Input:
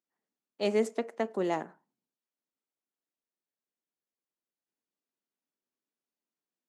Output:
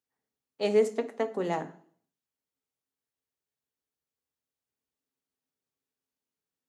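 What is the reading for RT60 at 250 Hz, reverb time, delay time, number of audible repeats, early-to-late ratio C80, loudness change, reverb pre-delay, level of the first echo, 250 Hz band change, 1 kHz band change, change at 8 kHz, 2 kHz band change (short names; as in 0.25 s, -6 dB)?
0.55 s, 0.55 s, none, none, 20.0 dB, +2.5 dB, 3 ms, none, -0.5 dB, +1.0 dB, +1.0 dB, +0.5 dB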